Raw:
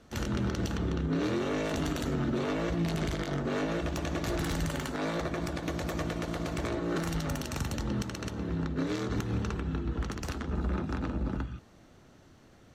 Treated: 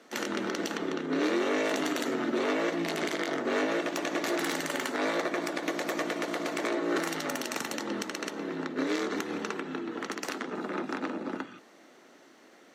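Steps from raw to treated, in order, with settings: HPF 270 Hz 24 dB/oct; bell 2000 Hz +5 dB 0.39 oct; gain +4 dB

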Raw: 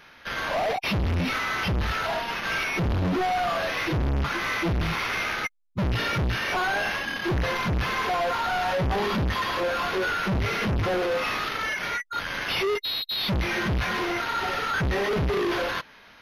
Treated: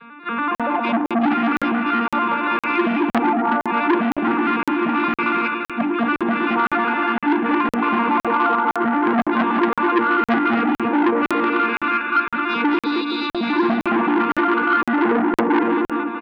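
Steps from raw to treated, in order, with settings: arpeggiated vocoder major triad, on A#3, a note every 95 ms; spectral gate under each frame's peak -20 dB strong; LPF 2400 Hz 12 dB/oct; notches 50/100/150/200/250/300 Hz; comb 0.8 ms, depth 84%; in parallel at -0.5 dB: compressor, threshold -35 dBFS, peak gain reduction 17 dB; on the sum: bouncing-ball echo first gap 0.22 s, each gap 0.7×, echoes 5; on a send at -23.5 dB: reverb RT60 0.15 s, pre-delay 3 ms; on the sum: crackling interface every 0.51 s, samples 2048, zero, from 0.55; core saturation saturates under 1200 Hz; gain +6.5 dB

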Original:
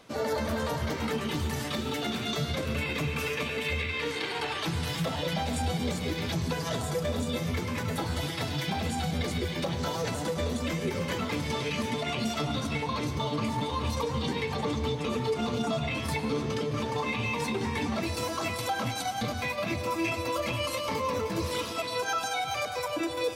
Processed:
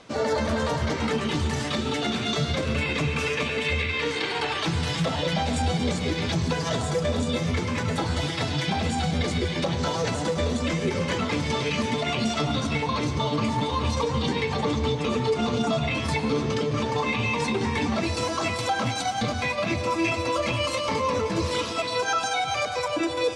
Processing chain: LPF 8500 Hz 24 dB/oct; gain +5 dB

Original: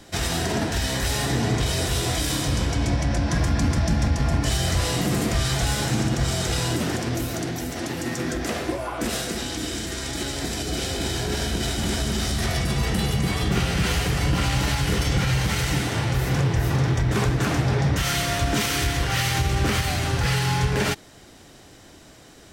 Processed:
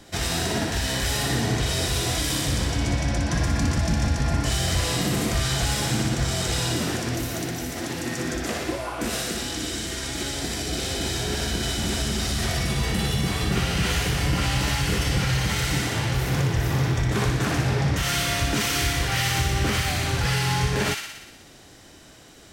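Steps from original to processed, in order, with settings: thin delay 60 ms, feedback 68%, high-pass 1500 Hz, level -4 dB; gain -1.5 dB

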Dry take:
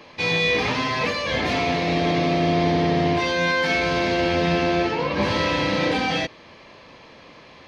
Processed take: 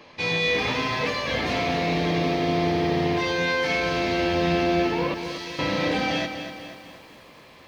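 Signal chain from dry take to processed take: 5.14–5.59 differentiator; lo-fi delay 0.242 s, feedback 55%, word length 8-bit, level -9 dB; gain -3 dB

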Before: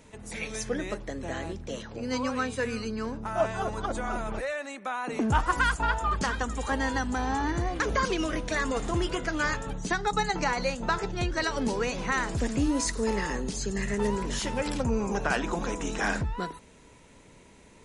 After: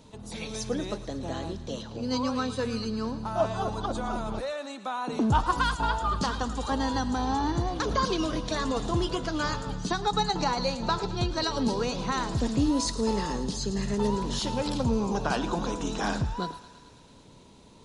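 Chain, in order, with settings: graphic EQ 125/250/1000/2000/4000/8000 Hz +5/+3/+5/-11/+10/-4 dB; thinning echo 0.11 s, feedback 77%, high-pass 630 Hz, level -15 dB; gain -1.5 dB

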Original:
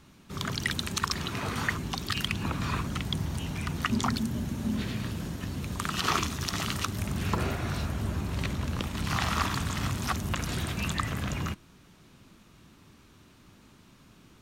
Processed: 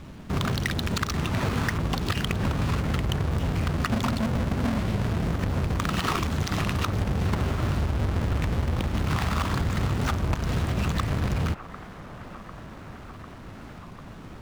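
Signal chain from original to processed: half-waves squared off; low shelf 78 Hz +5.5 dB; compressor, threshold -30 dBFS, peak gain reduction 13 dB; high shelf 6300 Hz -11 dB; band-limited delay 0.748 s, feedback 78%, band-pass 970 Hz, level -13 dB; record warp 33 1/3 rpm, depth 160 cents; gain +7 dB

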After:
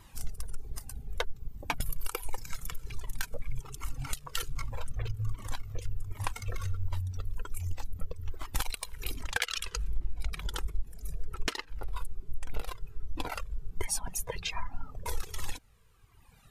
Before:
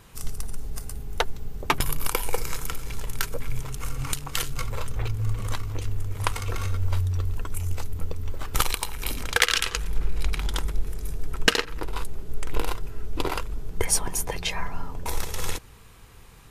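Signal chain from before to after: reverb removal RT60 1.8 s; compressor 2:1, threshold -27 dBFS, peak gain reduction 8.5 dB; cascading flanger falling 1.3 Hz

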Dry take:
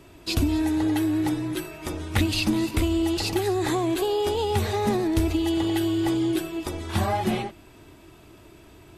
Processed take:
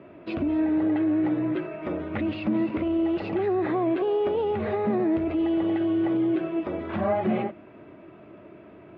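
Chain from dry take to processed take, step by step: limiter -20.5 dBFS, peak gain reduction 8 dB; speaker cabinet 160–2200 Hz, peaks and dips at 200 Hz +6 dB, 590 Hz +8 dB, 870 Hz -5 dB, 1700 Hz -3 dB; gain +3 dB

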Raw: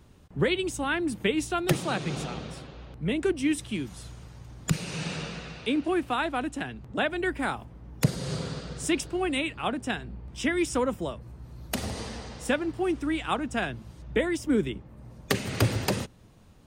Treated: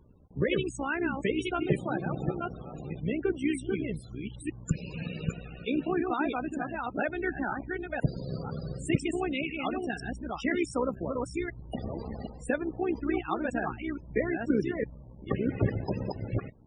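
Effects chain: reverse delay 0.5 s, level -3.5 dB; AM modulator 64 Hz, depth 50%; loudest bins only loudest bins 32

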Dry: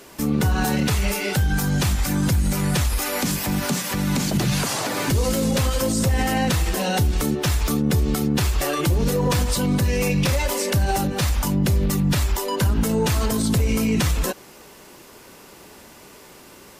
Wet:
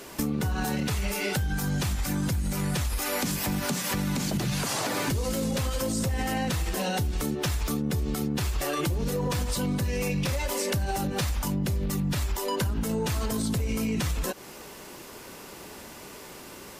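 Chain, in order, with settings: compressor, threshold -27 dBFS, peak gain reduction 10.5 dB; gain +1.5 dB

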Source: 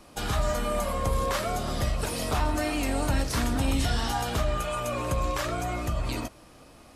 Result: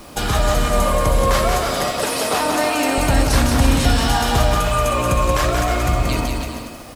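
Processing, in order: 1.51–2.98 HPF 280 Hz 12 dB/oct; in parallel at -1 dB: compressor, threshold -37 dBFS, peak gain reduction 15.5 dB; on the sum: bit-crush 9-bit; bouncing-ball echo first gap 0.18 s, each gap 0.75×, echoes 5; gain +7 dB

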